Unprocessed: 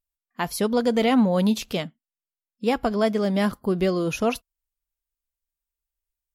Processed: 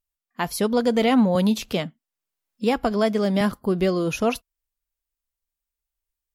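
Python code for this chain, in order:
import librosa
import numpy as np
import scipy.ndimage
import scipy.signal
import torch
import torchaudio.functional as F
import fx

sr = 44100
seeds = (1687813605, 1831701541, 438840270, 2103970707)

y = fx.band_squash(x, sr, depth_pct=40, at=(1.35, 3.41))
y = y * 10.0 ** (1.0 / 20.0)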